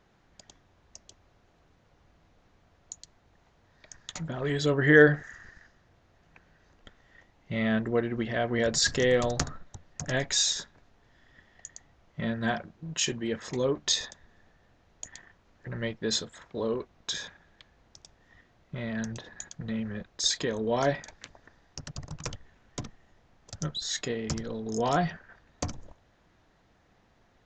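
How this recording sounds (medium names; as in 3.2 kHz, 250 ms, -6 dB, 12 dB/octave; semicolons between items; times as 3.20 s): noise floor -65 dBFS; spectral tilt -3.5 dB/octave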